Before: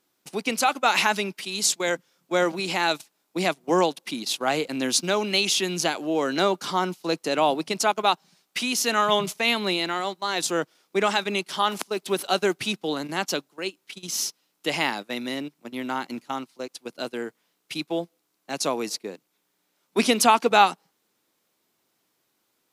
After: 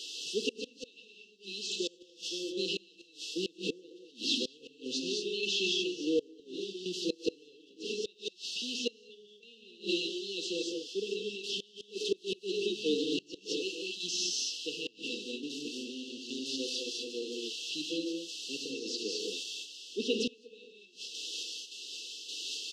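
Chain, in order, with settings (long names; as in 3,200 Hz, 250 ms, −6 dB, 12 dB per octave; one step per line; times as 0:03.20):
spike at every zero crossing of −17 dBFS
sample-and-hold tremolo, depth 80%
band-pass filter 330–6,300 Hz
high-frequency loss of the air 170 metres
on a send: repeating echo 69 ms, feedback 57%, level −24 dB
on the sum: reverb whose tail is shaped and stops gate 250 ms rising, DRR −1 dB
gate with flip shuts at −16 dBFS, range −27 dB
linear-phase brick-wall band-stop 510–2,600 Hz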